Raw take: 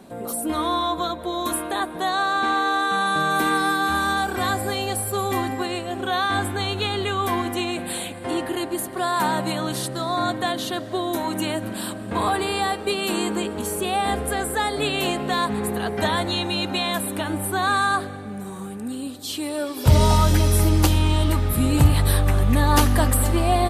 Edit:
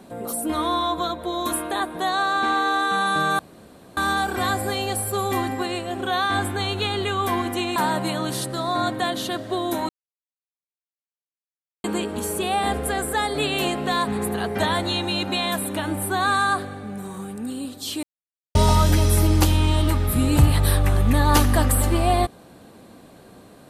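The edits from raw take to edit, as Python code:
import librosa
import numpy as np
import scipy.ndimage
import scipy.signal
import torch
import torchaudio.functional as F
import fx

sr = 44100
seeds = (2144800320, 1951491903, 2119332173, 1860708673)

y = fx.edit(x, sr, fx.room_tone_fill(start_s=3.39, length_s=0.58),
    fx.cut(start_s=7.76, length_s=1.42),
    fx.silence(start_s=11.31, length_s=1.95),
    fx.silence(start_s=19.45, length_s=0.52), tone=tone)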